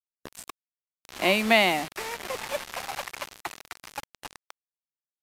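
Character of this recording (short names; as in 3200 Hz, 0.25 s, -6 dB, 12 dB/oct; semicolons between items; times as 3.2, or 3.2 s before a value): a quantiser's noise floor 6-bit, dither none; AC-3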